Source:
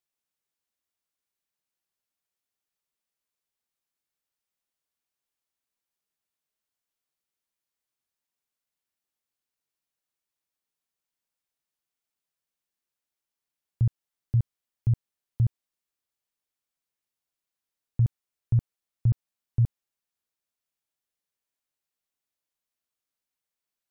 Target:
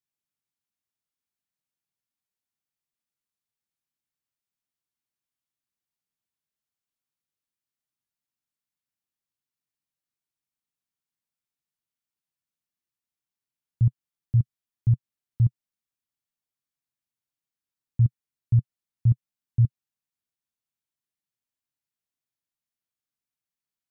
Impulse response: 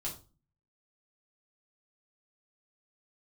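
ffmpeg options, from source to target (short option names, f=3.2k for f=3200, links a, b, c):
-af "equalizer=f=125:t=o:w=1:g=8,equalizer=f=250:t=o:w=1:g=4,equalizer=f=500:t=o:w=1:g=-5,volume=-5dB"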